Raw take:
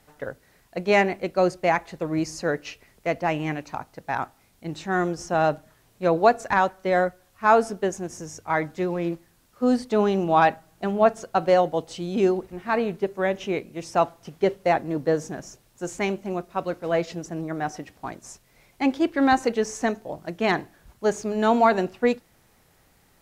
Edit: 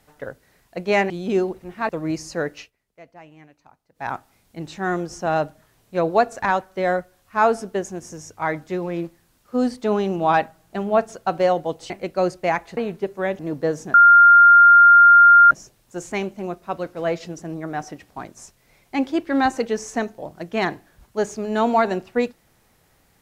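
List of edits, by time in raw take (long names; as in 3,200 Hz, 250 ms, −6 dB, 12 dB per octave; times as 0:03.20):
0:01.10–0:01.97: swap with 0:11.98–0:12.77
0:02.65–0:04.16: duck −20 dB, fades 0.14 s
0:13.39–0:14.83: remove
0:15.38: insert tone 1,400 Hz −6.5 dBFS 1.57 s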